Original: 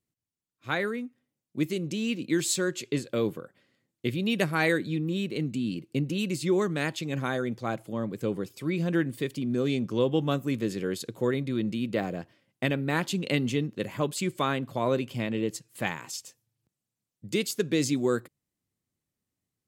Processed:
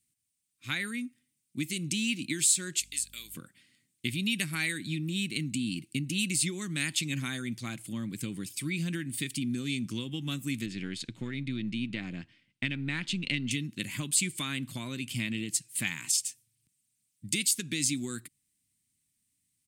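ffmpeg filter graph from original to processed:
ffmpeg -i in.wav -filter_complex "[0:a]asettb=1/sr,asplit=3[link_01][link_02][link_03];[link_01]atrim=end=2.804[link_04];[link_02]atrim=start=2.8:end=3.35,asetpts=PTS-STARTPTS,afade=type=in:duration=0.004:curve=qsin,afade=type=out:start_time=0.546:duration=0.004:curve=qsin,aderivative,aeval=exprs='val(0)+0.00112*(sin(2*PI*50*n/s)+sin(2*PI*2*50*n/s)/2+sin(2*PI*3*50*n/s)/3+sin(2*PI*4*50*n/s)/4+sin(2*PI*5*50*n/s)/5)':channel_layout=same[link_05];[link_03]atrim=start=3.346[link_06];[link_04][link_05]acrossfade=duration=0.004:curve1=hsin:curve2=qsin[link_07];[link_07][link_06]acrossfade=duration=0.004:curve1=qsin:curve2=hsin,asettb=1/sr,asplit=3[link_08][link_09][link_10];[link_08]atrim=end=10.664[link_11];[link_09]atrim=start=10.66:end=13.51,asetpts=PTS-STARTPTS,afade=type=in:duration=0.004:curve=qsin,afade=type=out:start_time=2.846:duration=0.004:curve=qsin,aeval=exprs='if(lt(val(0),0),0.708*val(0),val(0))':channel_layout=same,lowpass=3600[link_12];[link_10]atrim=start=13.506[link_13];[link_11][link_12]acrossfade=duration=0.004:curve1=hsin:curve2=qsin[link_14];[link_14][link_13]acrossfade=duration=0.004:curve1=qsin:curve2=hsin,equalizer=frequency=8900:width_type=o:width=0.4:gain=12,acompressor=threshold=-28dB:ratio=6,firequalizer=gain_entry='entry(280,0);entry(450,-18);entry(2200,7)':delay=0.05:min_phase=1" out.wav

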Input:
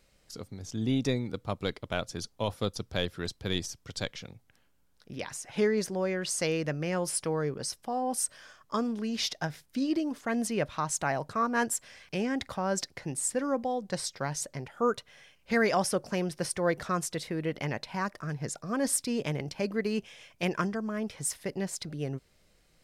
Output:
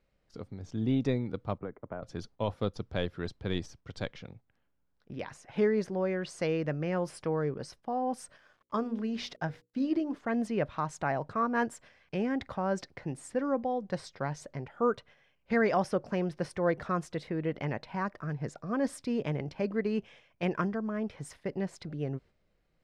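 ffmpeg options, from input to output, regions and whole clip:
ffmpeg -i in.wav -filter_complex "[0:a]asettb=1/sr,asplit=3[link_01][link_02][link_03];[link_01]atrim=end=1.584[link_04];[link_02]atrim=start=1.58:end=2.03,asetpts=PTS-STARTPTS,afade=type=in:duration=0.004:curve=qsin,afade=type=out:start_time=0.446:duration=0.004:curve=qsin,lowpass=frequency=1700:width=0.5412,lowpass=frequency=1700:width=1.3066,acrossover=split=150|1100[link_05][link_06][link_07];[link_05]acompressor=threshold=-52dB:ratio=4[link_08];[link_06]acompressor=threshold=-37dB:ratio=4[link_09];[link_07]acompressor=threshold=-52dB:ratio=4[link_10];[link_08][link_09][link_10]amix=inputs=3:normalize=0[link_11];[link_03]atrim=start=2.026[link_12];[link_04][link_11]acrossfade=duration=0.004:curve1=hsin:curve2=qsin[link_13];[link_13][link_12]acrossfade=duration=0.004:curve1=qsin:curve2=hsin,asettb=1/sr,asplit=3[link_14][link_15][link_16];[link_14]atrim=end=8.374[link_17];[link_15]atrim=start=8.37:end=10.15,asetpts=PTS-STARTPTS,afade=type=in:duration=0.004:curve=qsin,afade=type=out:start_time=1.776:duration=0.004:curve=qsin,aeval=exprs='val(0)*gte(abs(val(0)),0.002)':channel_layout=same,bandreject=frequency=60:width_type=h:width=6,bandreject=frequency=120:width_type=h:width=6,bandreject=frequency=180:width_type=h:width=6,bandreject=frequency=240:width_type=h:width=6,bandreject=frequency=300:width_type=h:width=6,bandreject=frequency=360:width_type=h:width=6,bandreject=frequency=420:width_type=h:width=6,bandreject=frequency=480:width_type=h:width=6,bandreject=frequency=540:width_type=h:width=6[link_18];[link_16]atrim=start=10.146[link_19];[link_17][link_18]acrossfade=duration=0.004:curve1=hsin:curve2=qsin[link_20];[link_20][link_19]acrossfade=duration=0.004:curve1=qsin:curve2=hsin,aemphasis=mode=reproduction:type=75kf,agate=range=-7dB:threshold=-52dB:ratio=16:detection=peak,highshelf=frequency=5100:gain=-8" out.wav

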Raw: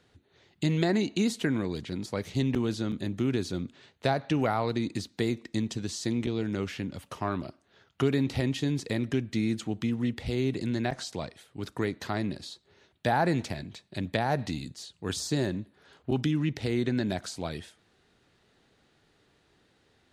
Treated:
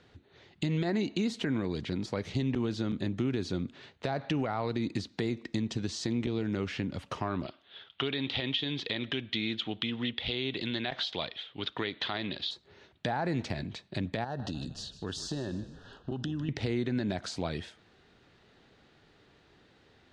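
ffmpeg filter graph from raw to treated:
ffmpeg -i in.wav -filter_complex "[0:a]asettb=1/sr,asplit=3[link_01][link_02][link_03];[link_01]atrim=end=7.464[link_04];[link_02]atrim=start=7.46:end=12.51,asetpts=PTS-STARTPTS,afade=type=in:duration=0.004:curve=qsin,afade=type=out:start_time=5.046:duration=0.004:curve=qsin,lowpass=frequency=3400:width_type=q:width=5.9,lowshelf=frequency=330:gain=-11[link_05];[link_03]atrim=start=12.506[link_06];[link_04][link_05]acrossfade=duration=0.004:curve1=hsin:curve2=qsin[link_07];[link_07][link_06]acrossfade=duration=0.004:curve1=qsin:curve2=hsin,asettb=1/sr,asplit=3[link_08][link_09][link_10];[link_08]atrim=end=14.244[link_11];[link_09]atrim=start=14.24:end=16.49,asetpts=PTS-STARTPTS,afade=type=in:duration=0.004:curve=qsin,afade=type=out:start_time=2.246:duration=0.004:curve=qsin,asuperstop=centerf=2200:order=8:qfactor=2.9,acompressor=threshold=-37dB:ratio=3:attack=3.2:release=140:knee=1:detection=peak,asplit=5[link_12][link_13][link_14][link_15][link_16];[link_13]adelay=153,afreqshift=-43,volume=-14.5dB[link_17];[link_14]adelay=306,afreqshift=-86,volume=-21.4dB[link_18];[link_15]adelay=459,afreqshift=-129,volume=-28.4dB[link_19];[link_16]adelay=612,afreqshift=-172,volume=-35.3dB[link_20];[link_12][link_17][link_18][link_19][link_20]amix=inputs=5:normalize=0,atrim=end_sample=99225[link_21];[link_10]atrim=start=16.486[link_22];[link_11][link_21]acrossfade=duration=0.004:curve1=hsin:curve2=qsin[link_23];[link_23][link_22]acrossfade=duration=0.004:curve1=qsin:curve2=hsin,lowpass=5100,alimiter=limit=-19.5dB:level=0:latency=1:release=82,acompressor=threshold=-36dB:ratio=2,volume=4.5dB" out.wav

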